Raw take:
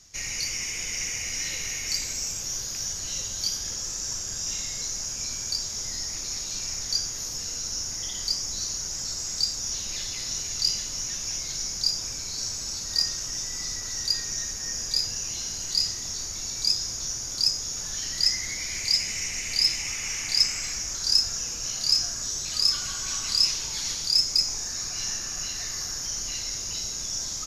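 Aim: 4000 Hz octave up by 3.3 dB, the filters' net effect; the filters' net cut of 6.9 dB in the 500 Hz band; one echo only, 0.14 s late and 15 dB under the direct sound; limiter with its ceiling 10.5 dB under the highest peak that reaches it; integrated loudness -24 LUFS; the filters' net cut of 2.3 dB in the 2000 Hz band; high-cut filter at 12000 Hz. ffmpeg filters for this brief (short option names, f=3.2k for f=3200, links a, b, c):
-af "lowpass=12k,equalizer=f=500:t=o:g=-9,equalizer=f=2k:t=o:g=-4,equalizer=f=4k:t=o:g=5.5,alimiter=limit=-15.5dB:level=0:latency=1,aecho=1:1:140:0.178,volume=2dB"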